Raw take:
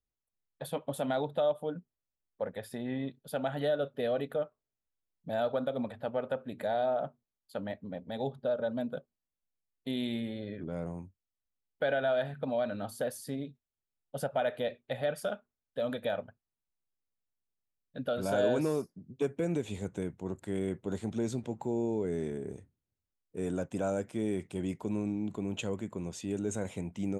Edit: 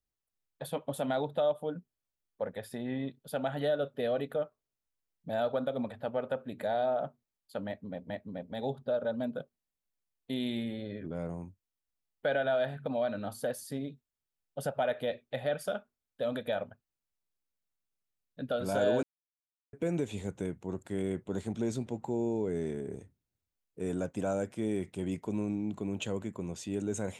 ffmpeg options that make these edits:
-filter_complex "[0:a]asplit=4[s0][s1][s2][s3];[s0]atrim=end=8.102[s4];[s1]atrim=start=7.668:end=18.6,asetpts=PTS-STARTPTS,afade=t=out:st=10.928:d=0.004:c=hsin[s5];[s2]atrim=start=18.6:end=19.3,asetpts=PTS-STARTPTS,volume=0[s6];[s3]atrim=start=19.3,asetpts=PTS-STARTPTS,afade=t=in:d=0.004:c=hsin[s7];[s5][s6][s7]concat=n=3:v=0:a=1[s8];[s4][s8]acrossfade=d=0.004:c1=hsin:c2=hsin"

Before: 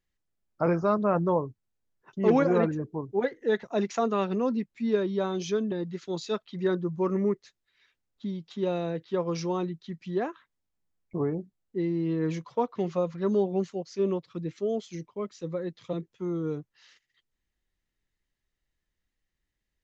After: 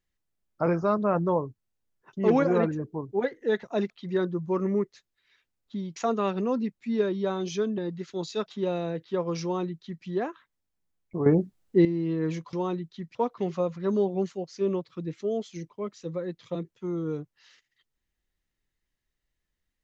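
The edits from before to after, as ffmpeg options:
-filter_complex "[0:a]asplit=8[s0][s1][s2][s3][s4][s5][s6][s7];[s0]atrim=end=3.902[s8];[s1]atrim=start=6.398:end=8.462[s9];[s2]atrim=start=3.898:end=6.402[s10];[s3]atrim=start=8.458:end=11.262[s11];[s4]atrim=start=11.258:end=11.852,asetpts=PTS-STARTPTS,volume=3.35[s12];[s5]atrim=start=11.848:end=12.532[s13];[s6]atrim=start=9.428:end=10.052[s14];[s7]atrim=start=12.528[s15];[s8][s9]acrossfade=d=0.004:c1=hsin:c2=hsin[s16];[s16][s10]acrossfade=d=0.004:c1=hsin:c2=hsin[s17];[s17][s11]acrossfade=d=0.004:c1=hsin:c2=hsin[s18];[s18][s12]acrossfade=d=0.004:c1=hsin:c2=hsin[s19];[s19][s13]acrossfade=d=0.004:c1=hsin:c2=hsin[s20];[s20][s14]acrossfade=d=0.004:c1=hsin:c2=hsin[s21];[s21][s15]acrossfade=d=0.004:c1=hsin:c2=hsin"

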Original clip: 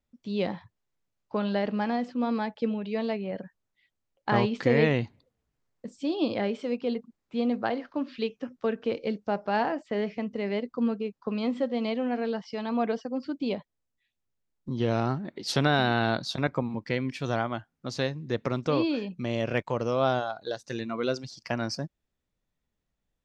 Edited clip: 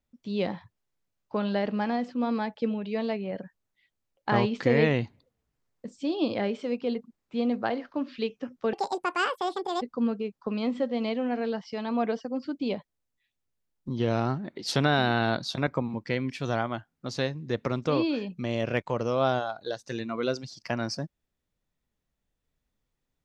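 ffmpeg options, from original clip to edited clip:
-filter_complex "[0:a]asplit=3[s0][s1][s2];[s0]atrim=end=8.734[s3];[s1]atrim=start=8.73:end=10.62,asetpts=PTS-STARTPTS,asetrate=76734,aresample=44100[s4];[s2]atrim=start=10.616[s5];[s3][s4]acrossfade=d=0.004:c1=hsin:c2=hsin[s6];[s6][s5]acrossfade=d=0.004:c1=hsin:c2=hsin"

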